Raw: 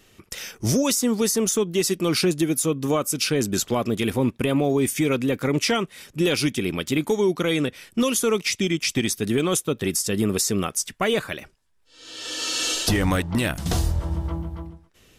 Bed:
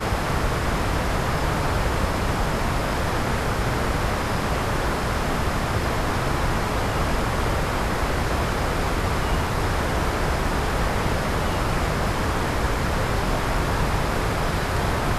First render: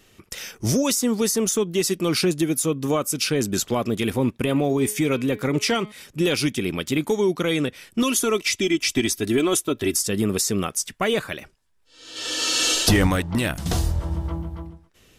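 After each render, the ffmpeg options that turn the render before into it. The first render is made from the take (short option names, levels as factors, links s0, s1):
-filter_complex "[0:a]asettb=1/sr,asplit=3[s0][s1][s2];[s0]atrim=end=4.424[s3];[s1]atrim=start=4.42:end=5.92,asetpts=PTS-STARTPTS,afade=t=in:d=0.004:c=qsin,afade=t=out:st=1.496:d=0.004:c=qsin,bandreject=f=211.3:t=h:w=4,bandreject=f=422.6:t=h:w=4,bandreject=f=633.9:t=h:w=4,bandreject=f=845.2:t=h:w=4,bandreject=f=1056.5:t=h:w=4,bandreject=f=1267.8:t=h:w=4,bandreject=f=1479.1:t=h:w=4,bandreject=f=1690.4:t=h:w=4,bandreject=f=1901.7:t=h:w=4,bandreject=f=2113:t=h:w=4,bandreject=f=2324.3:t=h:w=4,bandreject=f=2535.6:t=h:w=4,bandreject=f=2746.9:t=h:w=4,bandreject=f=2958.2:t=h:w=4,bandreject=f=3169.5:t=h:w=4,bandreject=f=3380.8:t=h:w=4,bandreject=f=3592.1:t=h:w=4,bandreject=f=3803.4:t=h:w=4,bandreject=f=4014.7:t=h:w=4,bandreject=f=4226:t=h:w=4,bandreject=f=4437.3:t=h:w=4,bandreject=f=4648.6:t=h:w=4[s4];[s2]atrim=start=5.916[s5];[s3][s4]acrossfade=d=0.004:c1=hsin:c2=qsin[s6];[s6][s5]acrossfade=d=0.004:c1=qsin:c2=hsin,asettb=1/sr,asplit=3[s7][s8][s9];[s7]atrim=end=8.024[s10];[s8]atrim=start=8.02:end=10.07,asetpts=PTS-STARTPTS,afade=t=in:d=0.004:c=qsin,afade=t=out:st=2.046:d=0.004:c=qsin,aecho=1:1:3:0.61,atrim=end_sample=90405[s11];[s9]atrim=start=10.066[s12];[s10][s11]acrossfade=d=0.004:c1=hsin:c2=qsin[s13];[s13][s12]acrossfade=d=0.004:c1=qsin:c2=hsin,asplit=3[s14][s15][s16];[s14]atrim=end=12.162[s17];[s15]atrim=start=12.158:end=13.072,asetpts=PTS-STARTPTS,volume=1.58[s18];[s16]atrim=start=13.068[s19];[s17][s18]acrossfade=d=0.004:c1=hsin:c2=hsin[s20];[s20][s19]acrossfade=d=0.004:c1=hsin:c2=hsin"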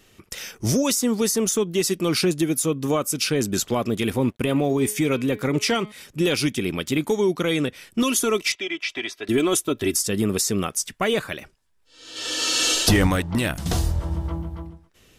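-filter_complex "[0:a]asettb=1/sr,asplit=3[s0][s1][s2];[s0]atrim=end=4.214[s3];[s1]atrim=start=4.21:end=4.82,asetpts=PTS-STARTPTS,afade=t=in:d=0.004:c=qsin,afade=t=out:st=0.606:d=0.004:c=qsin,aeval=exprs='sgn(val(0))*max(abs(val(0))-0.00141,0)':c=same[s4];[s2]atrim=start=4.816[s5];[s3][s4]acrossfade=d=0.004:c1=hsin:c2=qsin[s6];[s6][s5]acrossfade=d=0.004:c1=qsin:c2=hsin,asettb=1/sr,asplit=3[s7][s8][s9];[s7]atrim=end=8.524[s10];[s8]atrim=start=8.52:end=9.29,asetpts=PTS-STARTPTS,afade=t=in:d=0.004:c=qsin,afade=t=out:st=0.766:d=0.004:c=qsin,acrossover=split=460 4000:gain=0.0794 1 0.0708[s11][s12][s13];[s11][s12][s13]amix=inputs=3:normalize=0[s14];[s9]atrim=start=9.286[s15];[s10][s14]acrossfade=d=0.004:c1=hsin:c2=qsin[s16];[s16][s15]acrossfade=d=0.004:c1=qsin:c2=hsin"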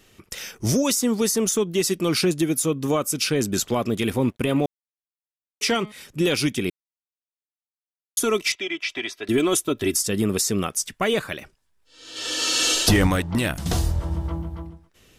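-filter_complex "[0:a]asplit=5[s0][s1][s2][s3][s4];[s0]atrim=end=4.66,asetpts=PTS-STARTPTS,afade=t=out:st=4.656:d=0.004:c=hsin[s5];[s1]atrim=start=4.66:end=5.61,asetpts=PTS-STARTPTS,volume=0[s6];[s2]atrim=start=5.61:end=6.7,asetpts=PTS-STARTPTS,afade=t=in:d=0.004:c=hsin,afade=t=out:st=1.086:d=0.004:c=hsin[s7];[s3]atrim=start=6.7:end=8.17,asetpts=PTS-STARTPTS,volume=0[s8];[s4]atrim=start=8.17,asetpts=PTS-STARTPTS,afade=t=in:d=0.004:c=hsin[s9];[s5][s6][s7][s8][s9]concat=n=5:v=0:a=1"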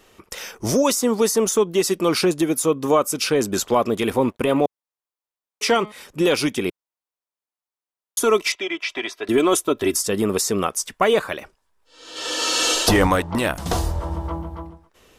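-af "equalizer=f=125:t=o:w=1:g=-5,equalizer=f=500:t=o:w=1:g=5,equalizer=f=1000:t=o:w=1:g=8"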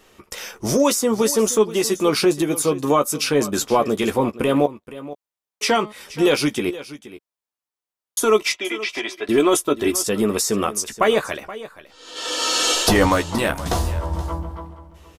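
-filter_complex "[0:a]asplit=2[s0][s1];[s1]adelay=14,volume=0.398[s2];[s0][s2]amix=inputs=2:normalize=0,aecho=1:1:475:0.158"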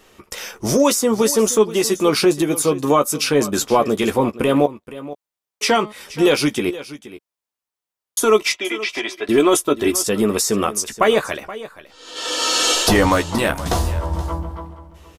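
-af "volume=1.26,alimiter=limit=0.708:level=0:latency=1"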